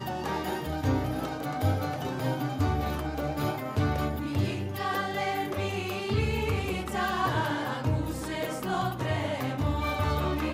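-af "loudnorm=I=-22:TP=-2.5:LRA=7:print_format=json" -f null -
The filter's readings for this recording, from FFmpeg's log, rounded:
"input_i" : "-30.0",
"input_tp" : "-16.0",
"input_lra" : "0.9",
"input_thresh" : "-40.0",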